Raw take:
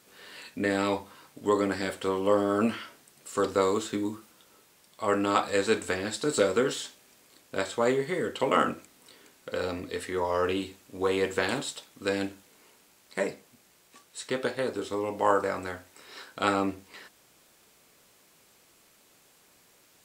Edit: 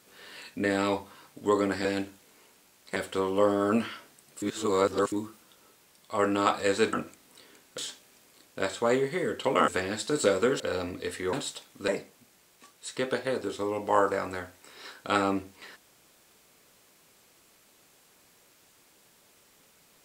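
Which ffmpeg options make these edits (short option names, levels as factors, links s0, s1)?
-filter_complex "[0:a]asplit=11[s0][s1][s2][s3][s4][s5][s6][s7][s8][s9][s10];[s0]atrim=end=1.852[s11];[s1]atrim=start=12.088:end=13.202[s12];[s2]atrim=start=1.848:end=3.312[s13];[s3]atrim=start=3.308:end=4.012,asetpts=PTS-STARTPTS,areverse[s14];[s4]atrim=start=4.008:end=5.822[s15];[s5]atrim=start=8.638:end=9.492[s16];[s6]atrim=start=6.738:end=8.642[s17];[s7]atrim=start=5.818:end=6.742[s18];[s8]atrim=start=9.488:end=10.222[s19];[s9]atrim=start=11.538:end=12.092[s20];[s10]atrim=start=13.198[s21];[s11][s12]acrossfade=d=0.004:c1=hsin:c2=hsin[s22];[s22][s13]acrossfade=d=0.004:c1=hsin:c2=hsin[s23];[s23][s14]acrossfade=d=0.004:c1=hsin:c2=hsin[s24];[s24][s15]acrossfade=d=0.004:c1=hsin:c2=hsin[s25];[s25][s16]acrossfade=d=0.004:c1=hsin:c2=hsin[s26];[s26][s17]acrossfade=d=0.004:c1=hsin:c2=hsin[s27];[s27][s18]acrossfade=d=0.004:c1=hsin:c2=hsin[s28];[s28][s19]acrossfade=d=0.004:c1=hsin:c2=hsin[s29];[s29][s20]acrossfade=d=0.004:c1=hsin:c2=hsin[s30];[s30][s21]acrossfade=d=0.004:c1=hsin:c2=hsin"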